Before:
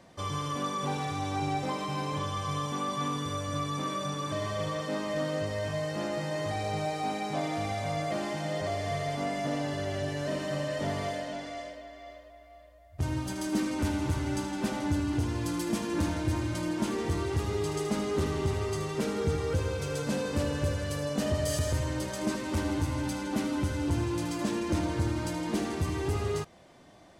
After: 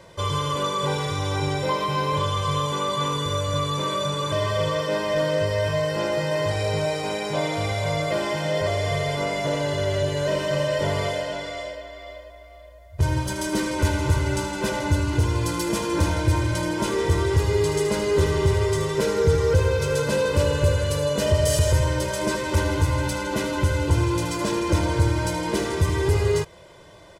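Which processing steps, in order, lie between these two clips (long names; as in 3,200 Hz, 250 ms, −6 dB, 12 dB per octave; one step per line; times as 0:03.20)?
comb filter 2 ms, depth 74%
level +7 dB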